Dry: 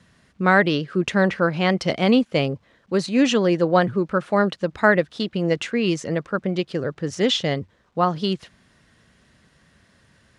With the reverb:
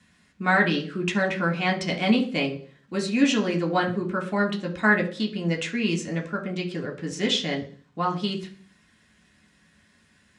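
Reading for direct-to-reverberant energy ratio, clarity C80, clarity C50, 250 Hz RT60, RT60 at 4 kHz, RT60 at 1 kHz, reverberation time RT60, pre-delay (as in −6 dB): 0.0 dB, 17.0 dB, 12.5 dB, 0.55 s, 0.55 s, 0.40 s, 0.40 s, 3 ms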